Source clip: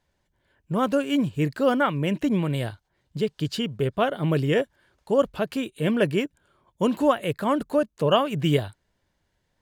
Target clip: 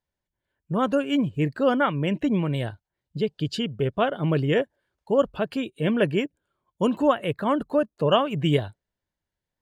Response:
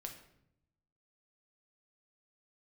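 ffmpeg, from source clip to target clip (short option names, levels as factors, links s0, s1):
-af "afftdn=nr=14:nf=-45"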